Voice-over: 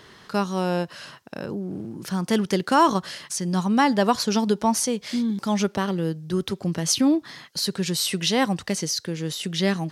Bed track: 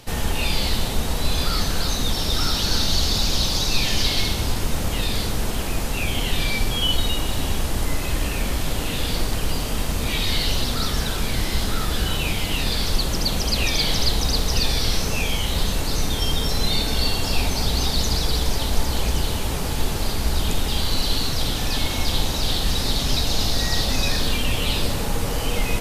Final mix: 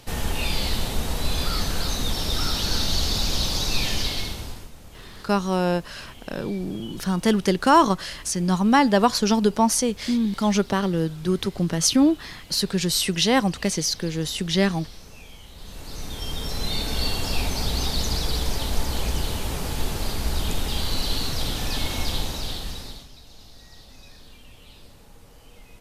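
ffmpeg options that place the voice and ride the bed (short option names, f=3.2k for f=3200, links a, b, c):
-filter_complex "[0:a]adelay=4950,volume=2dB[a];[1:a]volume=15dB,afade=t=out:st=3.85:d=0.86:silence=0.11885,afade=t=in:st=15.57:d=1.48:silence=0.125893,afade=t=out:st=22.01:d=1.08:silence=0.0749894[b];[a][b]amix=inputs=2:normalize=0"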